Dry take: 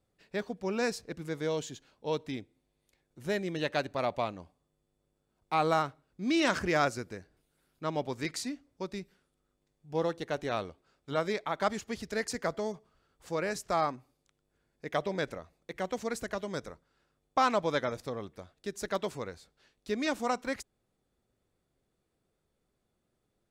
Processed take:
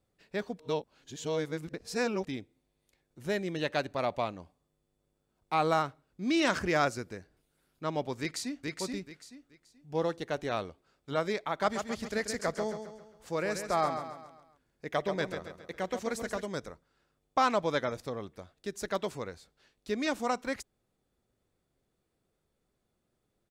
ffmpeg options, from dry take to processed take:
-filter_complex "[0:a]asplit=2[a][b];[b]afade=t=in:st=8.2:d=0.01,afade=t=out:st=8.67:d=0.01,aecho=0:1:430|860|1290|1720:0.749894|0.187474|0.0468684|0.0117171[c];[a][c]amix=inputs=2:normalize=0,asettb=1/sr,asplit=3[d][e][f];[d]atrim=end=11.504[g];[e]atrim=start=11.5:end=16.46,asetpts=PTS-STARTPTS,afade=t=in:d=0.004:c=qsin,afade=t=out:st=4.956:d=0.004:c=qsin,aecho=1:1:135|270|405|540|675:0.398|0.175|0.0771|0.0339|0.0149,atrim=end_sample=218736[h];[f]atrim=start=16.456[i];[g][h]acrossfade=d=0.004:c1=hsin:c2=qsin[j];[j][i]acrossfade=d=0.004:c1=qsin:c2=hsin,asplit=3[k][l][m];[k]atrim=end=0.592[n];[l]atrim=start=0.588:end=2.272,asetpts=PTS-STARTPTS,areverse[o];[m]atrim=start=2.268[p];[n][o]acrossfade=d=0.004:c1=hsin:c2=hsin[q];[q][p]acrossfade=d=0.004:c1=hsin:c2=hsin"

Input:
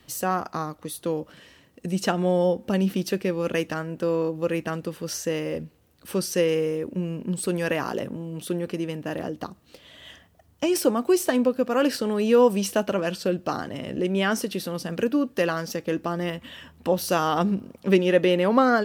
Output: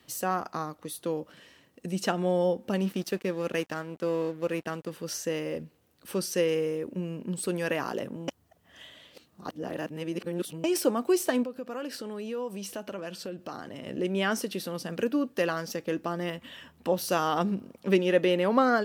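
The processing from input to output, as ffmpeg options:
-filter_complex "[0:a]asettb=1/sr,asplit=3[a][b][c];[a]atrim=end=2.754[d];[b]atrim=start=2.75:end=4.9,asetpts=PTS-STARTPTS,afade=t=in:d=0.004:c=qsin,afade=t=out:st=2.146:d=0.004:c=qsin,aeval=exprs='sgn(val(0))*max(abs(val(0))-0.00708,0)':c=same[e];[c]atrim=start=4.896[f];[d][e]acrossfade=d=0.004:c1=hsin:c2=qsin[g];[g][f]acrossfade=d=0.004:c1=qsin:c2=hsin,asettb=1/sr,asplit=3[h][i][j];[h]atrim=end=11.434[k];[i]atrim=start=11.43:end=13.86,asetpts=PTS-STARTPTS,afade=t=in:d=0.004:c=qsin,afade=t=out:st=2.426:d=0.004:c=qsin,acompressor=threshold=-33dB:ratio=2.5:attack=3.2:release=140:knee=1:detection=peak[l];[j]atrim=start=13.856[m];[k][l]acrossfade=d=0.004:c1=hsin:c2=qsin[n];[n][m]acrossfade=d=0.004:c1=qsin:c2=hsin,asplit=3[o][p][q];[o]atrim=end=8.282[r];[p]atrim=start=8.278:end=10.642,asetpts=PTS-STARTPTS,areverse[s];[q]atrim=start=10.638[t];[r][s]acrossfade=d=0.004:c1=hsin:c2=hsin[u];[u][t]acrossfade=d=0.004:c1=hsin:c2=hsin,highpass=f=140:p=1,volume=-3.5dB"

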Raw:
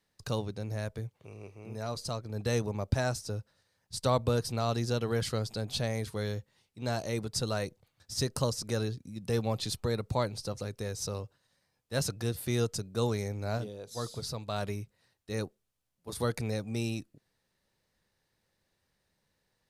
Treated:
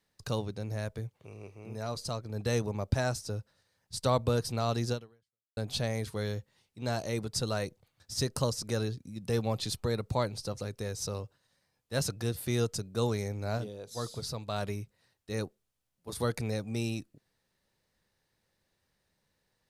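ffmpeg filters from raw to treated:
-filter_complex "[0:a]asplit=2[a][b];[a]atrim=end=5.57,asetpts=PTS-STARTPTS,afade=t=out:st=4.92:d=0.65:c=exp[c];[b]atrim=start=5.57,asetpts=PTS-STARTPTS,afade=t=in:d=0.004:c=hsin[d];[c][d]concat=n=2:v=0:a=1"

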